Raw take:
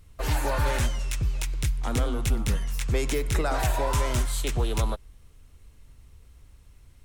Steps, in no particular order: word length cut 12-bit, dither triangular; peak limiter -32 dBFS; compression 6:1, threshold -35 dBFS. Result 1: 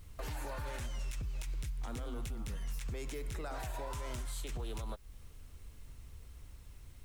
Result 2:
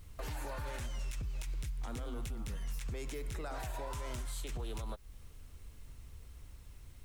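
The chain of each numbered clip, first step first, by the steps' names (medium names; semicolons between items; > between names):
compression > peak limiter > word length cut; compression > word length cut > peak limiter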